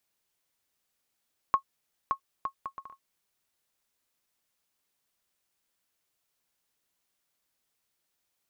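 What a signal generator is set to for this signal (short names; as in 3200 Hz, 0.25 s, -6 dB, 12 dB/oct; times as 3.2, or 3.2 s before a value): bouncing ball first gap 0.57 s, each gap 0.6, 1090 Hz, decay 90 ms -13 dBFS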